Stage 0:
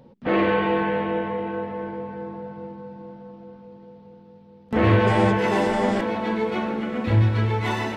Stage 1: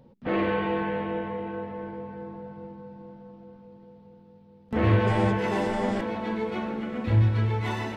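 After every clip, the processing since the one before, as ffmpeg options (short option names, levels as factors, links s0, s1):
-af "lowshelf=f=120:g=7,volume=0.501"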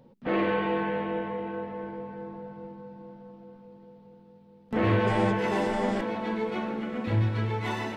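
-af "equalizer=f=67:t=o:w=0.92:g=-15"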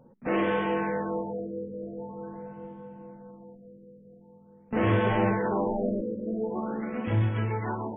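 -af "afftfilt=real='re*lt(b*sr/1024,590*pow(3600/590,0.5+0.5*sin(2*PI*0.45*pts/sr)))':imag='im*lt(b*sr/1024,590*pow(3600/590,0.5+0.5*sin(2*PI*0.45*pts/sr)))':win_size=1024:overlap=0.75"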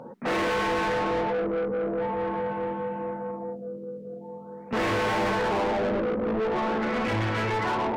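-filter_complex "[0:a]asplit=2[s0][s1];[s1]highpass=f=720:p=1,volume=50.1,asoftclip=type=tanh:threshold=0.237[s2];[s0][s2]amix=inputs=2:normalize=0,lowpass=f=2500:p=1,volume=0.501,volume=0.473"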